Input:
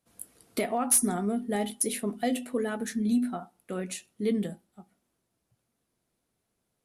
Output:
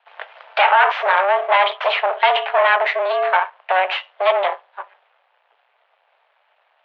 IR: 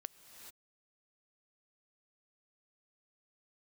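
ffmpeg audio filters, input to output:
-af "apsyclip=29dB,aeval=exprs='max(val(0),0)':channel_layout=same,highpass=frequency=440:width_type=q:width=0.5412,highpass=frequency=440:width_type=q:width=1.307,lowpass=frequency=3000:width_type=q:width=0.5176,lowpass=frequency=3000:width_type=q:width=0.7071,lowpass=frequency=3000:width_type=q:width=1.932,afreqshift=190,volume=-1dB"

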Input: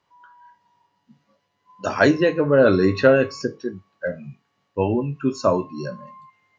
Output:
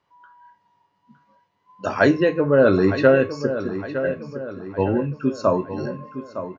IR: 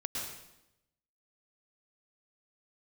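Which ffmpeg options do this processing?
-filter_complex "[0:a]highshelf=frequency=4700:gain=-9,asplit=2[link_01][link_02];[link_02]adelay=911,lowpass=frequency=4200:poles=1,volume=-11dB,asplit=2[link_03][link_04];[link_04]adelay=911,lowpass=frequency=4200:poles=1,volume=0.49,asplit=2[link_05][link_06];[link_06]adelay=911,lowpass=frequency=4200:poles=1,volume=0.49,asplit=2[link_07][link_08];[link_08]adelay=911,lowpass=frequency=4200:poles=1,volume=0.49,asplit=2[link_09][link_10];[link_10]adelay=911,lowpass=frequency=4200:poles=1,volume=0.49[link_11];[link_01][link_03][link_05][link_07][link_09][link_11]amix=inputs=6:normalize=0"

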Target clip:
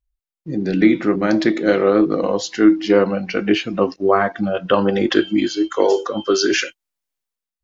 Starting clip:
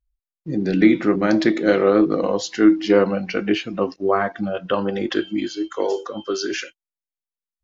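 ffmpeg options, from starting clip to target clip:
ffmpeg -i in.wav -af "dynaudnorm=framelen=100:gausssize=9:maxgain=11.5dB,volume=-1dB" out.wav

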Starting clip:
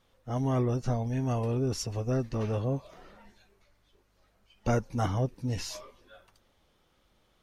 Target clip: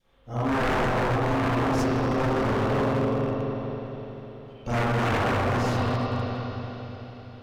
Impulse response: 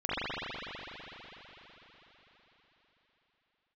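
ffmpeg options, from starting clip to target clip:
-filter_complex "[1:a]atrim=start_sample=2205[link_01];[0:a][link_01]afir=irnorm=-1:irlink=0,adynamicequalizer=threshold=0.00708:dfrequency=1100:dqfactor=2.9:tfrequency=1100:tqfactor=2.9:attack=5:release=100:ratio=0.375:range=4:mode=boostabove:tftype=bell,aeval=exprs='0.15*(abs(mod(val(0)/0.15+3,4)-2)-1)':channel_layout=same,volume=-2.5dB"

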